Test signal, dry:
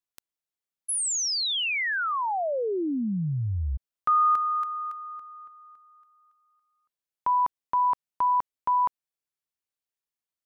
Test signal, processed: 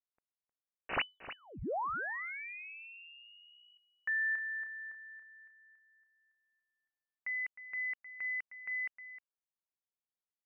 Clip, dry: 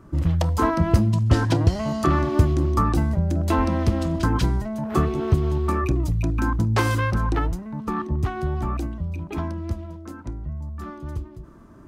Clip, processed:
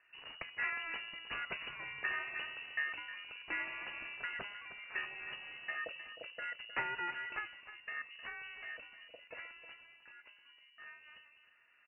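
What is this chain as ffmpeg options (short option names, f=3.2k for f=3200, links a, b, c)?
-af "aderivative,aeval=exprs='(mod(14.1*val(0)+1,2)-1)/14.1':c=same,lowpass=f=2.6k:t=q:w=0.5098,lowpass=f=2.6k:t=q:w=0.6013,lowpass=f=2.6k:t=q:w=0.9,lowpass=f=2.6k:t=q:w=2.563,afreqshift=-3000,aecho=1:1:310:0.224,volume=3dB"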